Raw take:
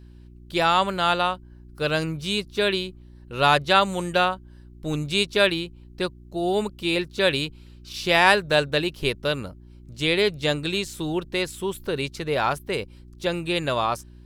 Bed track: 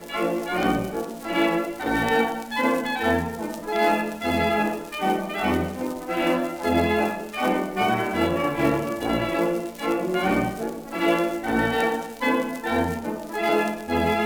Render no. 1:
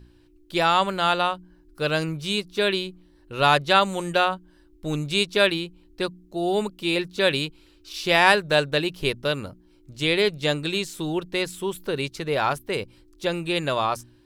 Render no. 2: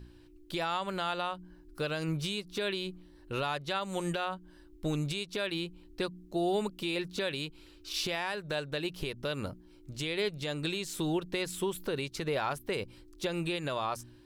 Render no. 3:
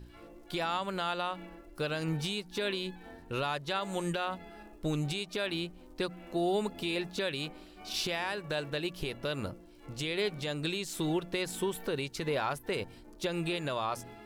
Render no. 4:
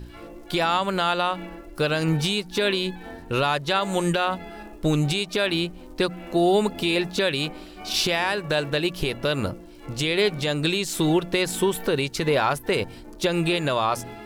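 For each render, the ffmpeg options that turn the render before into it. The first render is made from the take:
-af "bandreject=f=60:t=h:w=4,bandreject=f=120:t=h:w=4,bandreject=f=180:t=h:w=4,bandreject=f=240:t=h:w=4"
-af "acompressor=threshold=-26dB:ratio=6,alimiter=limit=-22dB:level=0:latency=1:release=150"
-filter_complex "[1:a]volume=-29dB[a];[0:a][a]amix=inputs=2:normalize=0"
-af "volume=10.5dB"

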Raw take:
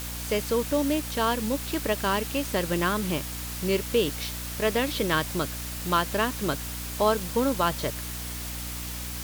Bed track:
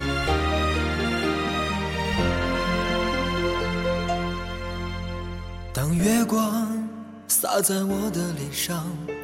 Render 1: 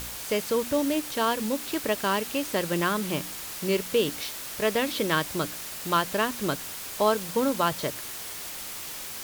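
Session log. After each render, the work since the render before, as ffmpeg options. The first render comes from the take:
-af "bandreject=f=60:t=h:w=4,bandreject=f=120:t=h:w=4,bandreject=f=180:t=h:w=4,bandreject=f=240:t=h:w=4,bandreject=f=300:t=h:w=4"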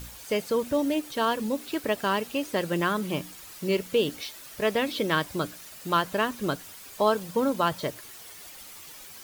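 -af "afftdn=nr=10:nf=-38"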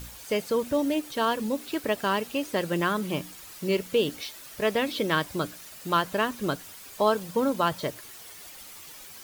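-af anull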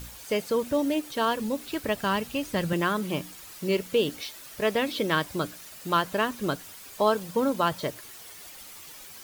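-filter_complex "[0:a]asettb=1/sr,asplit=3[a][b][c];[a]atrim=end=1.204[d];[b]atrim=start=1.2:end=2.73,asetpts=PTS-STARTPTS,afade=t=in:d=0.004:c=qsin,afade=t=out:st=1.526:d=0.004:c=qsin,asubboost=boost=10:cutoff=160[e];[c]atrim=start=2.726[f];[d][e]acrossfade=d=0.004:c1=hsin:c2=qsin[g];[g][f]acrossfade=d=0.004:c1=qsin:c2=hsin"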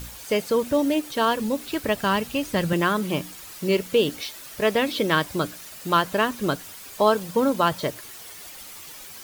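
-af "volume=4dB"

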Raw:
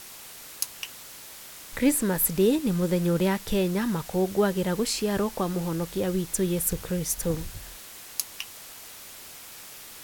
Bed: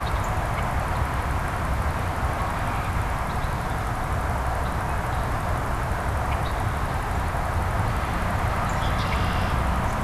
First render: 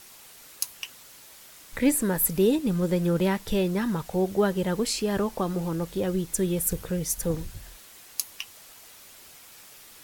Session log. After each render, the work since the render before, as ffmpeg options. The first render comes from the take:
-af "afftdn=nr=6:nf=-44"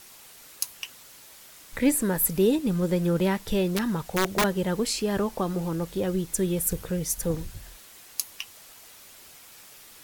-filter_complex "[0:a]asettb=1/sr,asplit=3[a][b][c];[a]atrim=end=3.744[d];[b]atrim=start=3.74:end=4.44,asetpts=PTS-STARTPTS,afade=t=in:d=0.004:c=qsin,afade=t=out:st=0.696:d=0.004:c=qsin,aeval=exprs='(mod(6.68*val(0)+1,2)-1)/6.68':c=same[e];[c]atrim=start=4.436[f];[d][e]acrossfade=d=0.004:c1=hsin:c2=qsin[g];[g][f]acrossfade=d=0.004:c1=qsin:c2=hsin"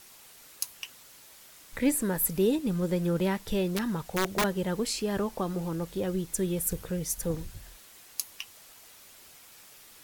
-af "volume=-3.5dB"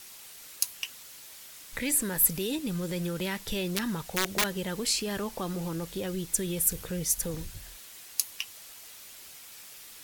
-filter_complex "[0:a]acrossover=split=1800[a][b];[a]alimiter=level_in=2dB:limit=-24dB:level=0:latency=1,volume=-2dB[c];[b]acontrast=32[d];[c][d]amix=inputs=2:normalize=0"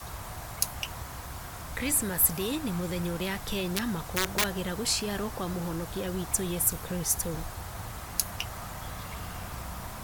-filter_complex "[1:a]volume=-15.5dB[a];[0:a][a]amix=inputs=2:normalize=0"

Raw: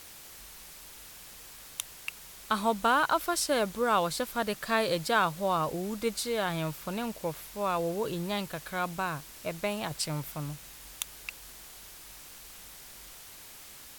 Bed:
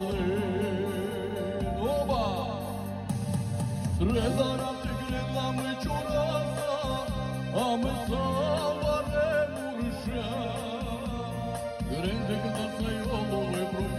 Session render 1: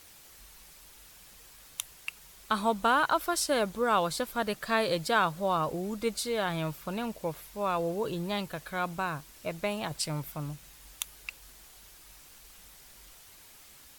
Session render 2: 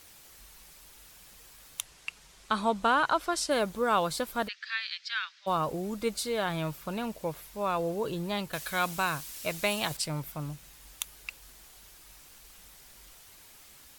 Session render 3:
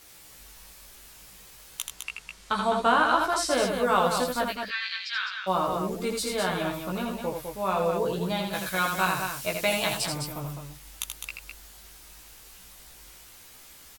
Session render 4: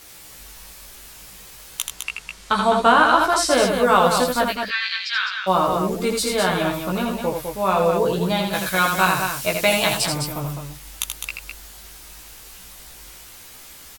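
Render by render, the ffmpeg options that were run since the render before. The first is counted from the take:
-af "afftdn=nr=6:nf=-49"
-filter_complex "[0:a]asettb=1/sr,asplit=3[a][b][c];[a]atrim=end=1.814[d];[b]atrim=start=1.81:end=3.51,asetpts=PTS-STARTPTS,afade=t=in:d=0.004:c=qsin,afade=t=out:st=1.696:d=0.004:c=qsin,lowpass=8.3k[e];[c]atrim=start=3.506[f];[d][e]acrossfade=d=0.004:c1=hsin:c2=qsin[g];[g][f]acrossfade=d=0.004:c1=qsin:c2=hsin,asplit=3[h][i][j];[h]afade=t=out:st=4.47:d=0.02[k];[i]asuperpass=centerf=3000:order=8:qfactor=0.75,afade=t=in:st=4.47:d=0.02,afade=t=out:st=5.46:d=0.02[l];[j]afade=t=in:st=5.46:d=0.02[m];[k][l][m]amix=inputs=3:normalize=0,asettb=1/sr,asplit=3[n][o][p];[n]atrim=end=8.534[q];[o]atrim=start=8.53:end=9.97,asetpts=PTS-STARTPTS,afade=t=in:d=0.004:c=qsin,afade=t=out:st=1.436:d=0.004:c=qsin,highshelf=f=2k:g=12[r];[p]atrim=start=9.966[s];[q][r]acrossfade=d=0.004:c1=hsin:c2=qsin[t];[t][s]acrossfade=d=0.004:c1=qsin:c2=hsin"
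-filter_complex "[0:a]asplit=2[a][b];[b]adelay=16,volume=-2.5dB[c];[a][c]amix=inputs=2:normalize=0,asplit=2[d][e];[e]aecho=0:1:81.63|207:0.562|0.501[f];[d][f]amix=inputs=2:normalize=0"
-af "volume=7.5dB,alimiter=limit=-3dB:level=0:latency=1"

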